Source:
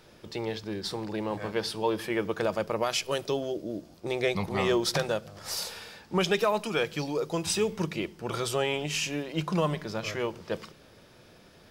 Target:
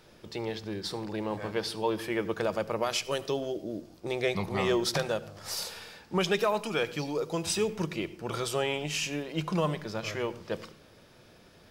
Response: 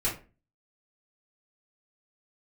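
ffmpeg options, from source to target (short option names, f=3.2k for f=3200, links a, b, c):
-filter_complex "[0:a]asplit=2[a][b];[1:a]atrim=start_sample=2205,adelay=74[c];[b][c]afir=irnorm=-1:irlink=0,volume=-25dB[d];[a][d]amix=inputs=2:normalize=0,volume=-1.5dB"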